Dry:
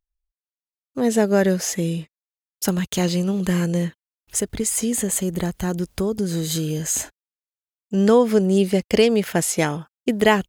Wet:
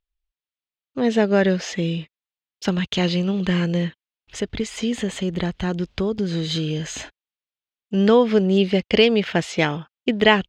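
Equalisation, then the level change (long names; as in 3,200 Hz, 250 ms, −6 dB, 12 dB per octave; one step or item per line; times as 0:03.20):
high-frequency loss of the air 180 metres
parametric band 3,200 Hz +10 dB 1.4 octaves
0.0 dB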